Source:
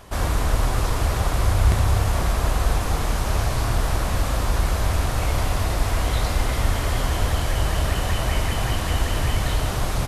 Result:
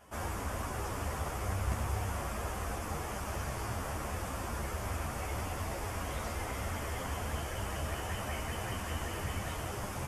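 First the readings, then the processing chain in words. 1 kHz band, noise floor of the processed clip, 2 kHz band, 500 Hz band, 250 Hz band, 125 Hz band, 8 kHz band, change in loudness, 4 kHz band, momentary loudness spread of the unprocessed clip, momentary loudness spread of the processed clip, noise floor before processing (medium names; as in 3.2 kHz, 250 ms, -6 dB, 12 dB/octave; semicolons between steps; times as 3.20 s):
-10.5 dB, -40 dBFS, -11.0 dB, -11.0 dB, -11.5 dB, -15.5 dB, -11.5 dB, -14.0 dB, -15.0 dB, 3 LU, 3 LU, -25 dBFS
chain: high-pass 120 Hz 6 dB/octave; peaking EQ 4 kHz -13 dB 0.38 oct; three-phase chorus; trim -7.5 dB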